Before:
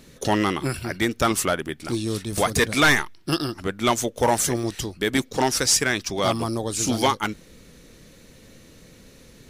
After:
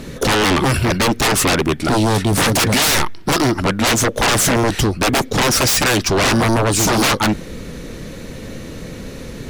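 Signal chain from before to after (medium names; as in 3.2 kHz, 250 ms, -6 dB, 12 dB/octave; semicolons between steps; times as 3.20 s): treble shelf 2.7 kHz -8.5 dB; sine folder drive 15 dB, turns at -11.5 dBFS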